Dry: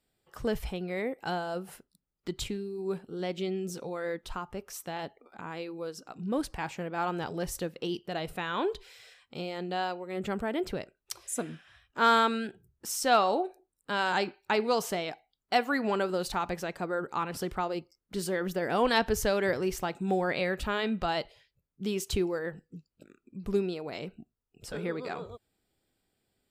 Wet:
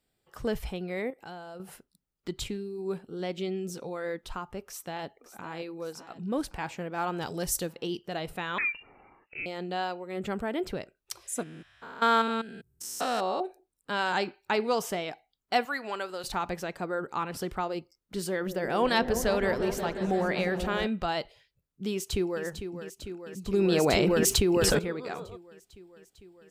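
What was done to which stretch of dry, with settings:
0:01.10–0:01.60: downward compressor 2 to 1, threshold −48 dBFS
0:04.65–0:05.50: delay throw 560 ms, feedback 60%, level −12.5 dB
0:07.21–0:07.73: bass and treble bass +1 dB, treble +10 dB
0:08.58–0:09.46: voice inversion scrambler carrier 2,800 Hz
0:11.43–0:13.41: spectrum averaged block by block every 200 ms
0:14.68–0:15.12: notch filter 4,200 Hz
0:15.65–0:16.24: high-pass filter 1,000 Hz 6 dB per octave
0:18.26–0:20.87: echo whose low-pass opens from repeat to repeat 176 ms, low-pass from 400 Hz, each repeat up 1 octave, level −6 dB
0:21.91–0:22.44: delay throw 450 ms, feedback 80%, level −9 dB
0:23.53–0:24.79: envelope flattener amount 100%

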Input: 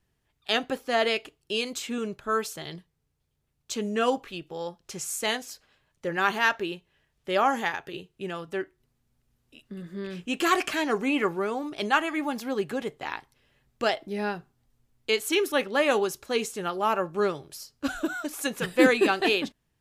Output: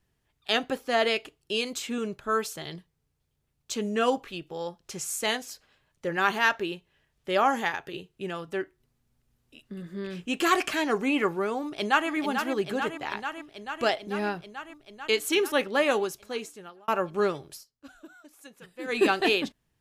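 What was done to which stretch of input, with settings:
0:11.61–0:12.09: delay throw 440 ms, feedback 80%, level −7 dB
0:15.75–0:16.88: fade out
0:17.53–0:18.99: duck −19.5 dB, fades 0.12 s

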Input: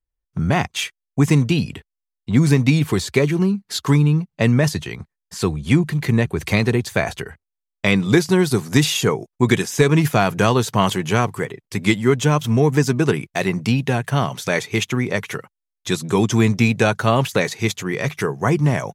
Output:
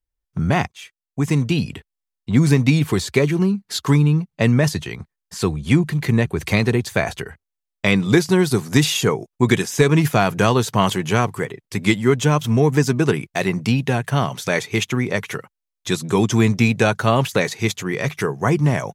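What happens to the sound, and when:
0:00.72–0:01.67: fade in, from −20 dB

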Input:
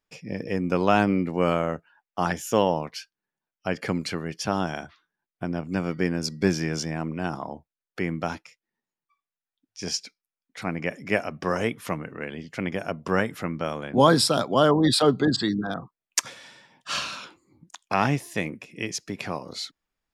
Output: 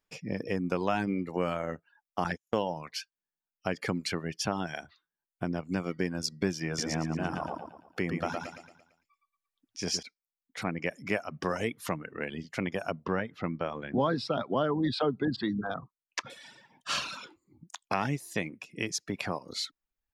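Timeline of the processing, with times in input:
0:02.24–0:02.69: noise gate −31 dBFS, range −44 dB
0:06.67–0:10.03: repeating echo 113 ms, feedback 49%, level −3.5 dB
0:13.04–0:16.30: high-frequency loss of the air 240 metres
whole clip: reverb reduction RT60 0.7 s; downward compressor 2.5 to 1, threshold −28 dBFS

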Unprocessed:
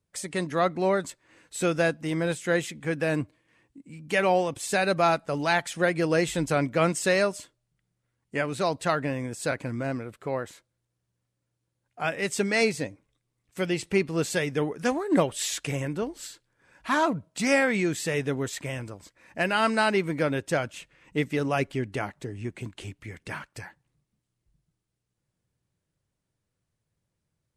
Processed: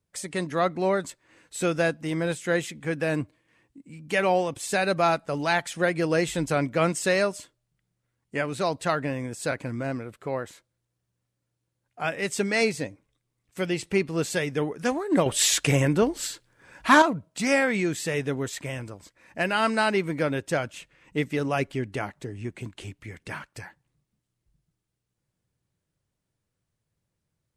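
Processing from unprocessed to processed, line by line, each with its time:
0:15.26–0:17.02: clip gain +8.5 dB

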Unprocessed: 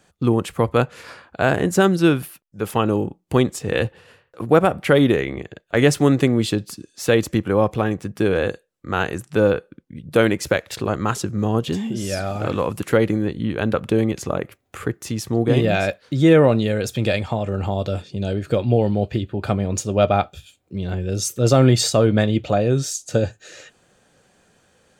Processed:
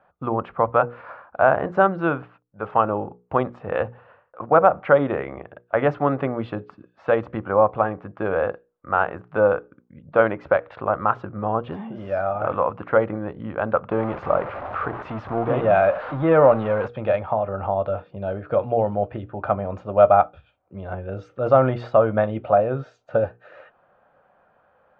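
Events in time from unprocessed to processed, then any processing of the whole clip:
0:13.91–0:16.88: converter with a step at zero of −24 dBFS
whole clip: low-pass filter 2,500 Hz 24 dB per octave; flat-topped bell 880 Hz +13 dB; mains-hum notches 60/120/180/240/300/360/420/480 Hz; level −8.5 dB

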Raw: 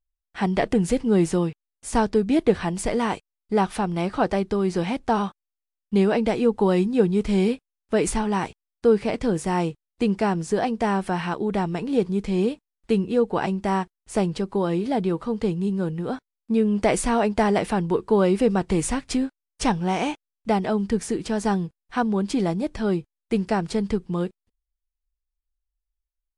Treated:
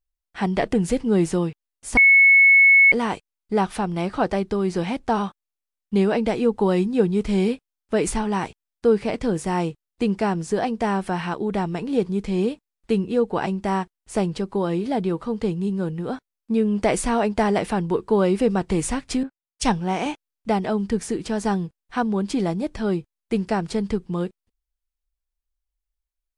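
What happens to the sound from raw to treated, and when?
0:01.97–0:02.92: beep over 2,200 Hz −9.5 dBFS
0:19.23–0:20.06: multiband upward and downward expander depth 70%

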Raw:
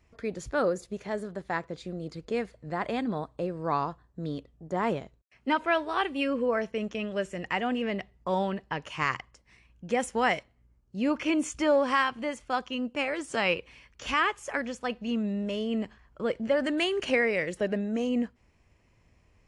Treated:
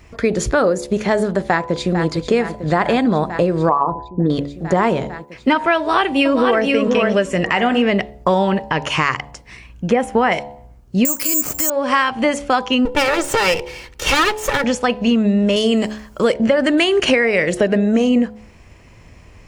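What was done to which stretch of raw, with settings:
0:01.43–0:02.09: delay throw 450 ms, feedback 85%, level −12 dB
0:03.69–0:04.30: spectral envelope exaggerated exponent 2
0:05.77–0:06.68: delay throw 480 ms, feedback 10%, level −4.5 dB
0:07.39–0:07.88: hum removal 62.1 Hz, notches 38
0:09.90–0:10.32: parametric band 6,800 Hz −14.5 dB 2.1 octaves
0:11.05–0:11.70: bad sample-rate conversion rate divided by 6×, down none, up zero stuff
0:12.85–0:14.64: lower of the sound and its delayed copy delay 2.2 ms
0:15.56–0:16.34: bass and treble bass −4 dB, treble +13 dB
whole clip: hum removal 71.4 Hz, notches 14; downward compressor 6 to 1, threshold −32 dBFS; boost into a limiter +22.5 dB; level −2.5 dB

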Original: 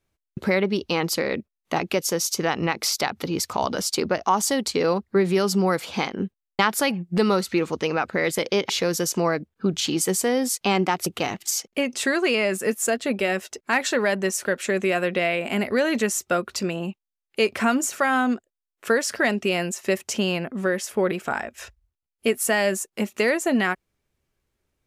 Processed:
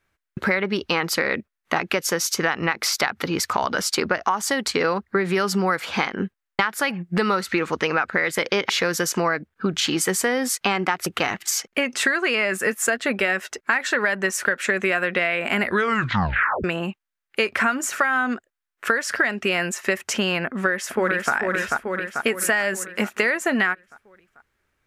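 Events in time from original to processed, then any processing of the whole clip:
0:15.63: tape stop 1.01 s
0:20.46–0:21.33: delay throw 440 ms, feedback 55%, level −4 dB
whole clip: parametric band 1,600 Hz +12.5 dB 1.4 octaves; downward compressor 12 to 1, threshold −18 dBFS; level +1 dB

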